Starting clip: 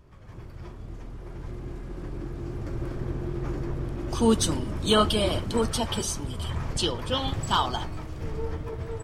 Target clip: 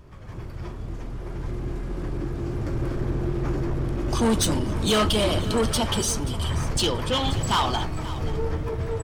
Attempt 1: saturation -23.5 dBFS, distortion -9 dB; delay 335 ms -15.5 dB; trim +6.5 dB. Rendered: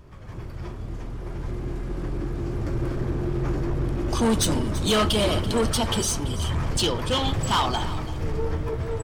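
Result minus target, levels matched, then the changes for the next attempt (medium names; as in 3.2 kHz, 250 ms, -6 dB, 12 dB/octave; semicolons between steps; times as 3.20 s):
echo 197 ms early
change: delay 532 ms -15.5 dB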